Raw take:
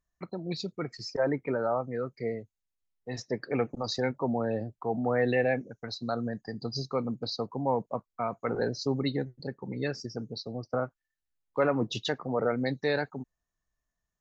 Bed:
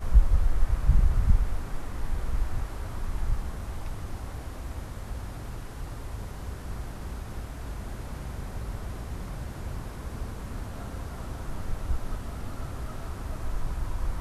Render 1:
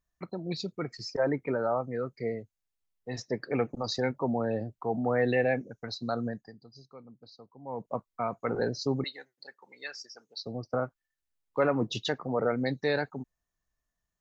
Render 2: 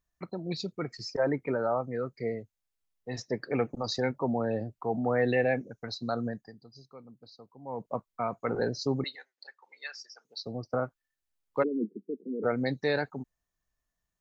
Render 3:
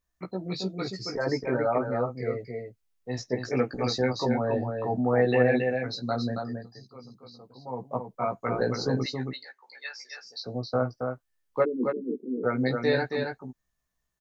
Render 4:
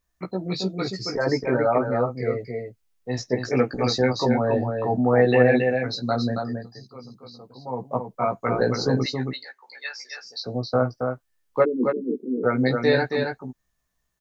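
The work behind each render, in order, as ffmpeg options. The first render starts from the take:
-filter_complex "[0:a]asettb=1/sr,asplit=3[a][b][c];[a]atrim=end=9.044[d];[b]atrim=start=9.04:end=10.41,asetpts=PTS-STARTPTS,afade=t=in:d=0.004:c=qsin,afade=t=out:st=1.366:d=0.004:c=qsin,highpass=1.2k[e];[c]atrim=start=10.406[f];[d][e]acrossfade=d=0.004:c1=hsin:c2=qsin[g];[g][f]acrossfade=d=0.004:c1=qsin:c2=hsin,asplit=3[h][i][j];[h]atrim=end=6.67,asetpts=PTS-STARTPTS,afade=t=out:st=6.29:d=0.38:c=qua:silence=0.112202[k];[i]atrim=start=6.67:end=7.54,asetpts=PTS-STARTPTS,volume=-19dB[l];[j]atrim=start=7.54,asetpts=PTS-STARTPTS,afade=t=in:d=0.38:c=qua:silence=0.112202[m];[k][l][m]concat=n=3:v=0:a=1"
-filter_complex "[0:a]asettb=1/sr,asplit=3[a][b][c];[a]atrim=end=9.154[d];[b]atrim=start=9.15:end=10.25,asetpts=PTS-STARTPTS,afade=t=in:d=0.004:c=qsin,afade=t=out:st=1.096:d=0.004:c=qsin,highpass=780,lowpass=6.3k[e];[c]atrim=start=10.246[f];[d][e]acrossfade=d=0.004:c1=hsin:c2=qsin[g];[g][f]acrossfade=d=0.004:c1=qsin:c2=hsin,asplit=3[h][i][j];[h]afade=t=out:st=11.62:d=0.02[k];[i]asuperpass=centerf=290:order=12:qfactor=1.1,afade=t=in:st=11.62:d=0.02,afade=t=out:st=12.43:d=0.02[l];[j]afade=t=in:st=12.43:d=0.02[m];[k][l][m]amix=inputs=3:normalize=0"
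-filter_complex "[0:a]asplit=2[a][b];[b]adelay=16,volume=-2dB[c];[a][c]amix=inputs=2:normalize=0,aecho=1:1:274:0.562"
-af "volume=5dB"

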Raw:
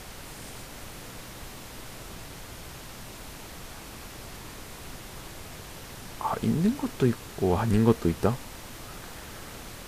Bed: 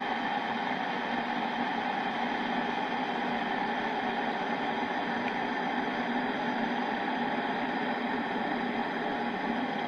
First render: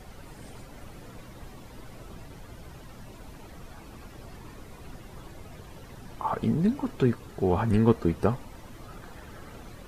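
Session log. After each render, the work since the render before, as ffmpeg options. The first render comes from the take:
-af "afftdn=nr=12:nf=-43"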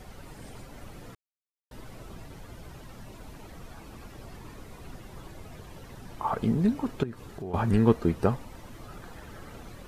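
-filter_complex "[0:a]asettb=1/sr,asplit=3[a][b][c];[a]atrim=end=7.034[d];[b]atrim=start=7.03:end=7.54,asetpts=PTS-STARTPTS,afade=t=in:d=0.004:c=qsin,afade=t=out:st=0.506:d=0.004:c=qsin,acompressor=threshold=-35dB:ratio=4:attack=3.2:release=140:knee=1:detection=peak[e];[c]atrim=start=7.536[f];[d][e]acrossfade=d=0.004:c1=hsin:c2=qsin[g];[g][f]acrossfade=d=0.004:c1=qsin:c2=hsin,asplit=3[h][i][j];[h]atrim=end=1.15,asetpts=PTS-STARTPTS,afade=t=out:st=1.146:d=0.004:c=hsin[k];[i]atrim=start=1.15:end=1.71,asetpts=PTS-STARTPTS,volume=0[l];[j]atrim=start=1.71,asetpts=PTS-STARTPTS,afade=t=in:d=0.004:c=hsin[m];[k][l][m]concat=n=3:v=0:a=1"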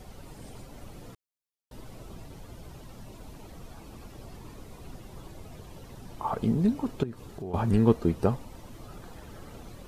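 -af "equalizer=f=1.7k:w=1.2:g=-5.5"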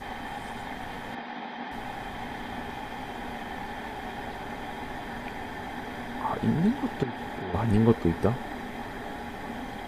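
-filter_complex "[1:a]volume=-6dB[a];[0:a][a]amix=inputs=2:normalize=0"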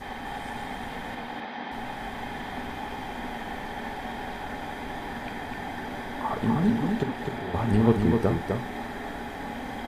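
-filter_complex "[0:a]asplit=2[a][b];[b]adelay=48,volume=-11dB[c];[a][c]amix=inputs=2:normalize=0,aecho=1:1:254:0.596"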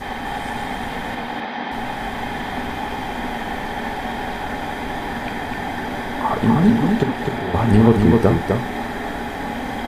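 -af "volume=9dB,alimiter=limit=-2dB:level=0:latency=1"

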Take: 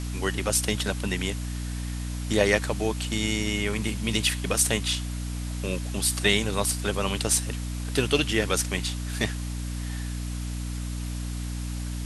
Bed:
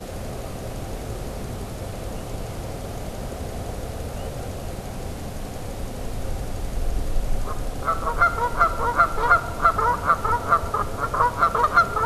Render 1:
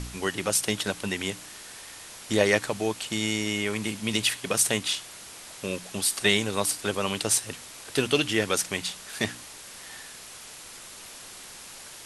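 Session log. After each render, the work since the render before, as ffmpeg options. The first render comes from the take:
-af "bandreject=f=60:t=h:w=4,bandreject=f=120:t=h:w=4,bandreject=f=180:t=h:w=4,bandreject=f=240:t=h:w=4,bandreject=f=300:t=h:w=4"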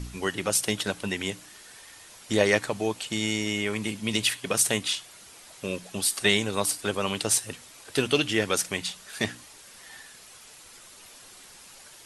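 -af "afftdn=nr=7:nf=-44"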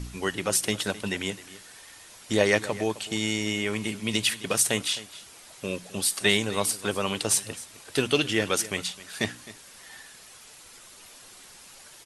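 -af "aecho=1:1:261:0.133"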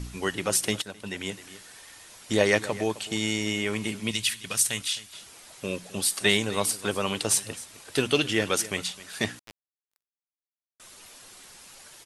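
-filter_complex "[0:a]asettb=1/sr,asplit=3[a][b][c];[a]atrim=end=4.114[d];[b]atrim=start=4.11:end=5.13,asetpts=PTS-STARTPTS,afade=t=in:d=0.004:c=qsin,afade=t=out:st=1.016:d=0.004:c=qsin,equalizer=f=450:w=0.43:g=-12.5[e];[c]atrim=start=5.126[f];[d][e]acrossfade=d=0.004:c1=hsin:c2=qsin[g];[g][f]acrossfade=d=0.004:c1=qsin:c2=hsin,asettb=1/sr,asplit=3[h][i][j];[h]atrim=end=9.394[k];[i]atrim=start=9.39:end=10.8,asetpts=PTS-STARTPTS,afade=t=in:d=0.004:c=qsin,afade=t=out:st=1.406:d=0.004:c=qsin,acrusher=bits=4:mix=0:aa=0.5[l];[j]atrim=start=10.796[m];[k][l]acrossfade=d=0.004:c1=hsin:c2=qsin[n];[n][m]acrossfade=d=0.004:c1=qsin:c2=hsin,asplit=2[o][p];[o]atrim=end=0.82,asetpts=PTS-STARTPTS,afade=t=out:st=0.816:d=0.004:c=hsin:silence=0.188365[q];[p]atrim=start=0.82,asetpts=PTS-STARTPTS,afade=t=in:d=0.65:silence=0.188365[r];[q][r]concat=n=2:v=0:a=1"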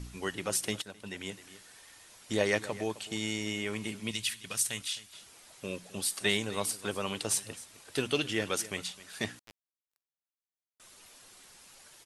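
-af "volume=-6.5dB"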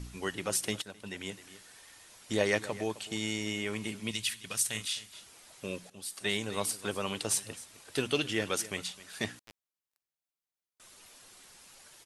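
-filter_complex "[0:a]asettb=1/sr,asplit=3[a][b][c];[a]atrim=end=4.714[d];[b]atrim=start=4.71:end=5.2,asetpts=PTS-STARTPTS,afade=t=in:d=0.004:c=qsin,afade=t=out:st=0.486:d=0.004:c=qsin,asplit=2[e][f];[f]adelay=37,volume=-6dB[g];[e][g]amix=inputs=2:normalize=0,atrim=end_sample=21609[h];[c]atrim=start=5.196[i];[d][h]acrossfade=d=0.004:c1=hsin:c2=qsin[j];[j][i]acrossfade=d=0.004:c1=qsin:c2=hsin,asplit=2[k][l];[k]atrim=end=5.9,asetpts=PTS-STARTPTS,afade=t=out:st=5.896:d=0.004:c=hsin:silence=0.16788[m];[l]atrim=start=5.9,asetpts=PTS-STARTPTS,afade=t=in:d=0.66:silence=0.16788[n];[m][n]concat=n=2:v=0:a=1"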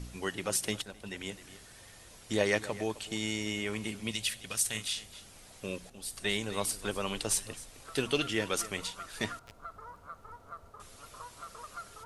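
-filter_complex "[1:a]volume=-27.5dB[a];[0:a][a]amix=inputs=2:normalize=0"

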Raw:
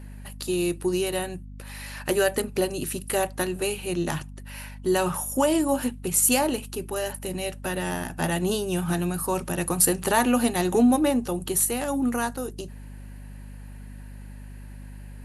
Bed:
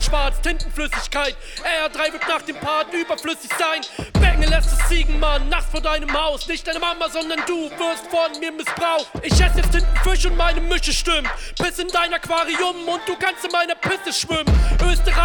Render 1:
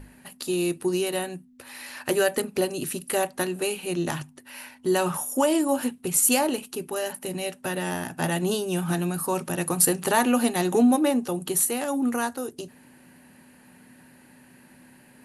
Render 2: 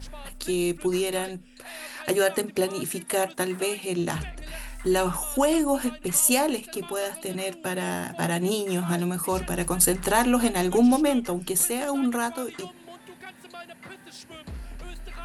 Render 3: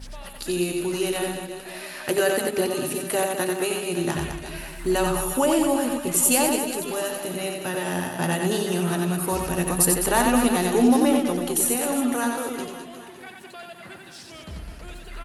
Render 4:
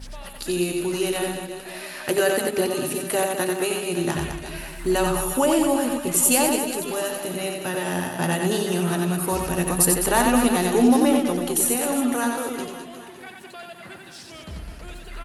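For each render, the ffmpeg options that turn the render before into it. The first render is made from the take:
-af "bandreject=f=50:t=h:w=6,bandreject=f=100:t=h:w=6,bandreject=f=150:t=h:w=6,bandreject=f=200:t=h:w=6"
-filter_complex "[1:a]volume=-23dB[a];[0:a][a]amix=inputs=2:normalize=0"
-af "aecho=1:1:90|207|359.1|556.8|813.9:0.631|0.398|0.251|0.158|0.1"
-af "volume=1dB"

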